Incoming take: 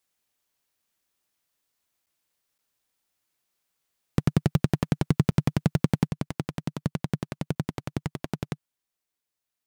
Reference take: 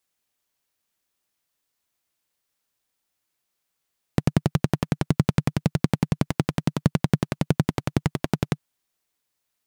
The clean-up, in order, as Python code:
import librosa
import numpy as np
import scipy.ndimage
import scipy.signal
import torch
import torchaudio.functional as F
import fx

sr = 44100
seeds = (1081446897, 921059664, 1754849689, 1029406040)

y = fx.fix_declip(x, sr, threshold_db=-10.5)
y = fx.fix_interpolate(y, sr, at_s=(2.06, 2.58, 5.31, 6.29, 7.55), length_ms=8.3)
y = fx.fix_level(y, sr, at_s=6.07, step_db=7.5)